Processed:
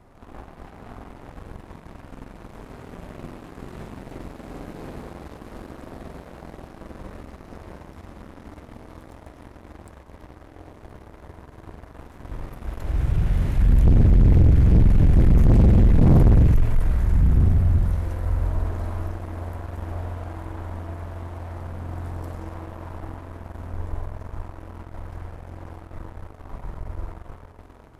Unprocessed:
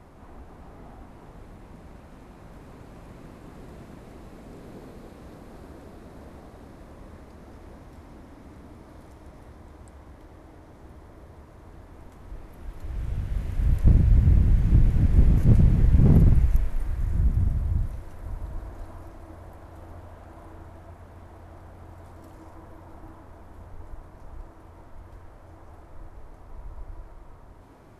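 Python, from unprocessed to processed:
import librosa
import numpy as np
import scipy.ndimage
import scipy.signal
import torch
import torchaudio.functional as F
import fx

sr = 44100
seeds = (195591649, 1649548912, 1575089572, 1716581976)

y = fx.rev_spring(x, sr, rt60_s=1.2, pass_ms=(46,), chirp_ms=25, drr_db=1.5)
y = fx.leveller(y, sr, passes=2)
y = 10.0 ** (-10.5 / 20.0) * np.tanh(y / 10.0 ** (-10.5 / 20.0))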